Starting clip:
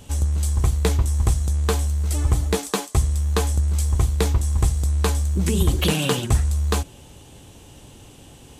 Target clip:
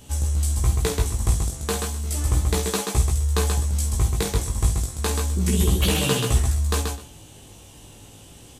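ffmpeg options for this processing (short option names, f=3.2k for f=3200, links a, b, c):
-filter_complex "[0:a]asplit=2[a][b];[b]aecho=0:1:50|132|256:0.376|0.596|0.106[c];[a][c]amix=inputs=2:normalize=0,flanger=delay=15.5:depth=4.1:speed=0.33,highshelf=f=4.5k:g=5.5"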